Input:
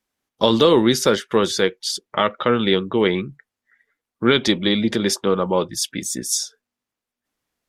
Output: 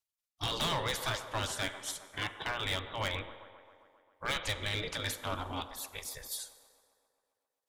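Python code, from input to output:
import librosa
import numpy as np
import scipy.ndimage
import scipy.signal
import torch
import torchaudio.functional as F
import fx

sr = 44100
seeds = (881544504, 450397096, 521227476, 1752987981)

y = fx.spec_gate(x, sr, threshold_db=-15, keep='weak')
y = fx.low_shelf(y, sr, hz=93.0, db=12.0)
y = fx.echo_wet_bandpass(y, sr, ms=133, feedback_pct=70, hz=640.0, wet_db=-13.0)
y = fx.rev_schroeder(y, sr, rt60_s=1.4, comb_ms=31, drr_db=15.5)
y = np.clip(y, -10.0 ** (-22.5 / 20.0), 10.0 ** (-22.5 / 20.0))
y = y * 10.0 ** (-5.5 / 20.0)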